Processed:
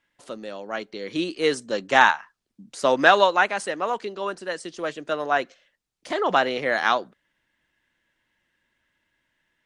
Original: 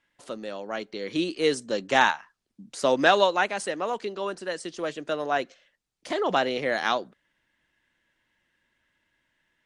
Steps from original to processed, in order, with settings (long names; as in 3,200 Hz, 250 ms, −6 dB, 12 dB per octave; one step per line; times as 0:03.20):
dynamic equaliser 1,300 Hz, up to +6 dB, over −35 dBFS, Q 0.75